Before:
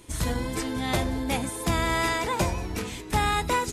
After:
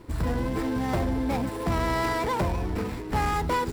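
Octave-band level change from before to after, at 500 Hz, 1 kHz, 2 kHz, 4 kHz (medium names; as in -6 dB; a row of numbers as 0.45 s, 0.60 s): +1.0 dB, -0.5 dB, -4.0 dB, -7.0 dB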